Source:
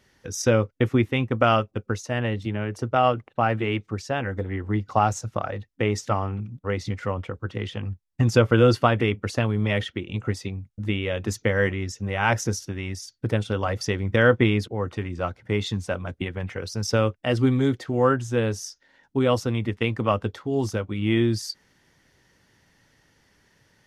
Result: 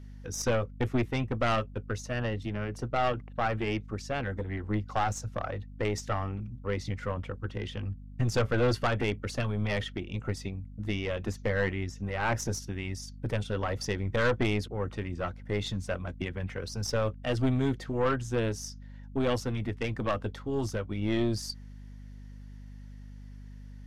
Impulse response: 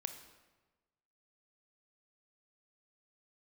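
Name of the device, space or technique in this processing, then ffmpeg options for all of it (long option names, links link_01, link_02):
valve amplifier with mains hum: -filter_complex "[0:a]aeval=exprs='(tanh(7.94*val(0)+0.45)-tanh(0.45))/7.94':channel_layout=same,aeval=exprs='val(0)+0.00891*(sin(2*PI*50*n/s)+sin(2*PI*2*50*n/s)/2+sin(2*PI*3*50*n/s)/3+sin(2*PI*4*50*n/s)/4+sin(2*PI*5*50*n/s)/5)':channel_layout=same,asettb=1/sr,asplit=3[link_01][link_02][link_03];[link_01]atrim=end=11.084[link_04];[link_02]atrim=start=11.08:end=12.39,asetpts=PTS-STARTPTS,afade=type=in:duration=0.004:curve=qsin,afade=type=out:start_time=1.306:duration=0.004:curve=qsin,acrossover=split=2900[link_05][link_06];[link_06]acompressor=threshold=-42dB:ratio=4:attack=1:release=60[link_07];[link_05][link_07]amix=inputs=2:normalize=0[link_08];[link_03]atrim=start=12.386[link_09];[link_04][link_08]acrossfade=duration=0.004:curve1=hsin:curve2=qsin[link_10];[link_10][link_09]acrossfade=duration=0.004:curve1=qsin:curve2=hsin,volume=-3dB"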